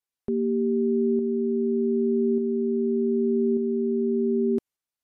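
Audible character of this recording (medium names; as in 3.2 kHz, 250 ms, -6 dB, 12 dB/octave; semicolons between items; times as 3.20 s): tremolo saw up 0.84 Hz, depth 35%; MP3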